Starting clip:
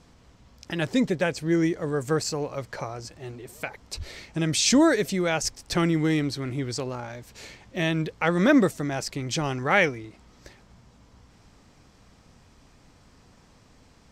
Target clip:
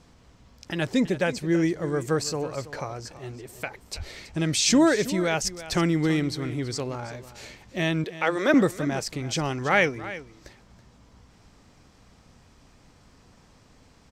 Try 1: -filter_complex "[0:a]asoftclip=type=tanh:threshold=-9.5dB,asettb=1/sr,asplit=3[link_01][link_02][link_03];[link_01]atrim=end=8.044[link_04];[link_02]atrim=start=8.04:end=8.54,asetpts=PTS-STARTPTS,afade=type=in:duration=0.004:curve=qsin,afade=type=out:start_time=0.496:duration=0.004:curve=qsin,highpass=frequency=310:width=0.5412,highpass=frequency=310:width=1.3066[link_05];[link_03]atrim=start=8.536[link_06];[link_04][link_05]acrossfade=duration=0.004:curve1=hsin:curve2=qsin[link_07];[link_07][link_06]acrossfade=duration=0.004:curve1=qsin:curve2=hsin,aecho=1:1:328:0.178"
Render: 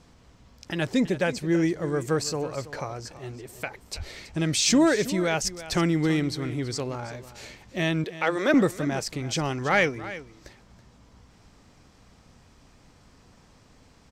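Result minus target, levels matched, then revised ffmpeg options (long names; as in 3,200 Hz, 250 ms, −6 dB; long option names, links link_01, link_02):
soft clipping: distortion +13 dB
-filter_complex "[0:a]asoftclip=type=tanh:threshold=-2dB,asettb=1/sr,asplit=3[link_01][link_02][link_03];[link_01]atrim=end=8.044[link_04];[link_02]atrim=start=8.04:end=8.54,asetpts=PTS-STARTPTS,afade=type=in:duration=0.004:curve=qsin,afade=type=out:start_time=0.496:duration=0.004:curve=qsin,highpass=frequency=310:width=0.5412,highpass=frequency=310:width=1.3066[link_05];[link_03]atrim=start=8.536[link_06];[link_04][link_05]acrossfade=duration=0.004:curve1=hsin:curve2=qsin[link_07];[link_07][link_06]acrossfade=duration=0.004:curve1=qsin:curve2=hsin,aecho=1:1:328:0.178"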